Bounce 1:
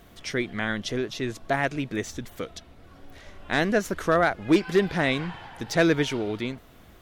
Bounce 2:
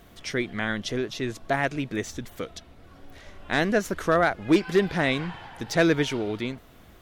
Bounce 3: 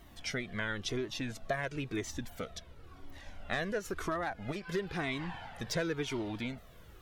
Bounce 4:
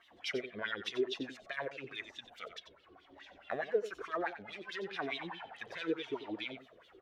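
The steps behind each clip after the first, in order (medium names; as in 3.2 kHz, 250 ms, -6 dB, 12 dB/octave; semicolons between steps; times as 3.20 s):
no audible change
compression 6:1, threshold -26 dBFS, peak gain reduction 11.5 dB; Shepard-style flanger falling 0.97 Hz
tracing distortion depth 0.032 ms; wah-wah 4.7 Hz 350–3600 Hz, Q 3.6; delay 91 ms -11.5 dB; trim +7 dB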